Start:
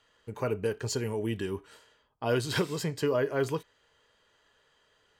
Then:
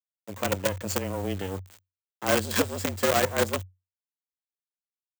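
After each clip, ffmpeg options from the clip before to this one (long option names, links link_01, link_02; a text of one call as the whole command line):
ffmpeg -i in.wav -af "acrusher=bits=5:dc=4:mix=0:aa=0.000001,aexciter=amount=1.2:drive=6.4:freq=6700,afreqshift=92,volume=3dB" out.wav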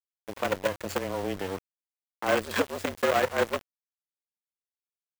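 ffmpeg -i in.wav -filter_complex "[0:a]bass=frequency=250:gain=-8,treble=frequency=4000:gain=-12,asplit=2[link_01][link_02];[link_02]acompressor=threshold=-35dB:ratio=5,volume=-1dB[link_03];[link_01][link_03]amix=inputs=2:normalize=0,aeval=exprs='val(0)*gte(abs(val(0)),0.0188)':channel_layout=same,volume=-1.5dB" out.wav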